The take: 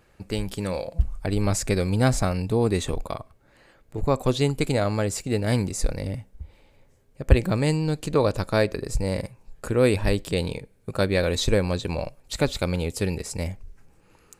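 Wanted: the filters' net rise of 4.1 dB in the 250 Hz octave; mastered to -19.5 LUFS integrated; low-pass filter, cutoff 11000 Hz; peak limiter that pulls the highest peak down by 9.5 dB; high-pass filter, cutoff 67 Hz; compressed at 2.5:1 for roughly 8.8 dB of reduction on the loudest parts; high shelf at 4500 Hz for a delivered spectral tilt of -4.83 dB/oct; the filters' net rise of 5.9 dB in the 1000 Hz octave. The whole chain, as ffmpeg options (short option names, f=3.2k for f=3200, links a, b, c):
-af "highpass=67,lowpass=11k,equalizer=f=250:t=o:g=5,equalizer=f=1k:t=o:g=7,highshelf=f=4.5k:g=7.5,acompressor=threshold=-24dB:ratio=2.5,volume=10.5dB,alimiter=limit=-7.5dB:level=0:latency=1"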